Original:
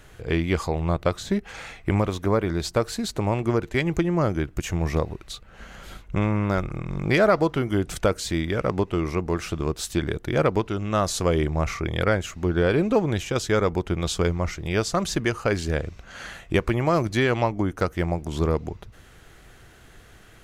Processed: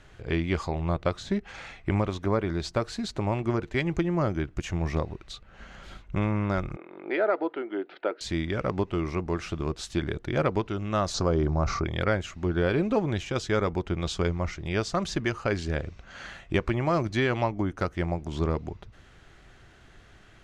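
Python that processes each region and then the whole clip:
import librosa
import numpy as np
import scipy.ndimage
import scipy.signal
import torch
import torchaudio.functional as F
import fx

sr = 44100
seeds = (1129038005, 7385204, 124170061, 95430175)

y = fx.chain(x, sr, fx.ellip_bandpass(low_hz=330.0, high_hz=4600.0, order=3, stop_db=50),
    fx.air_absorb(metres=390.0),
    fx.notch(hz=1100.0, q=6.1), at=(6.76, 8.21))
y = fx.chain(y, sr, fx.lowpass(hz=6400.0, slope=24),
    fx.band_shelf(hz=2500.0, db=-11.0, octaves=1.2),
    fx.env_flatten(amount_pct=50), at=(11.14, 11.84))
y = scipy.signal.sosfilt(scipy.signal.butter(2, 5900.0, 'lowpass', fs=sr, output='sos'), y)
y = fx.notch(y, sr, hz=470.0, q=12.0)
y = y * librosa.db_to_amplitude(-3.5)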